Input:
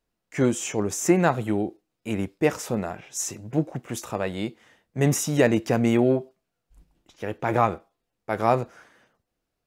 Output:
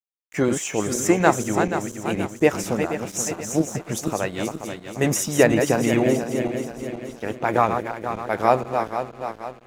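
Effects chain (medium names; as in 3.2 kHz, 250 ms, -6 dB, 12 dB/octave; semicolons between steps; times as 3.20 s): backward echo that repeats 240 ms, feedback 70%, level -6 dB; harmonic-percussive split percussive +8 dB; crossover distortion -42.5 dBFS; trim -3 dB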